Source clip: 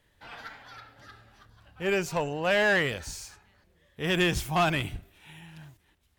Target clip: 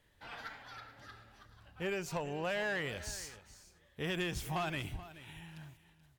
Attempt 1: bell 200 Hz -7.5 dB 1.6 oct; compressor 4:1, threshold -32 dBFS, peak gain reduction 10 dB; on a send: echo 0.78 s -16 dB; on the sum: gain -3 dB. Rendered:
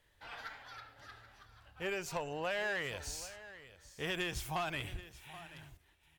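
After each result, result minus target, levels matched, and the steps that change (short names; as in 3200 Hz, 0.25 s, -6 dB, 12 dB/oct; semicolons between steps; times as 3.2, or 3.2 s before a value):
echo 0.35 s late; 250 Hz band -3.5 dB
change: echo 0.43 s -16 dB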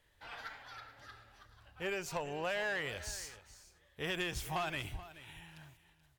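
250 Hz band -4.0 dB
remove: bell 200 Hz -7.5 dB 1.6 oct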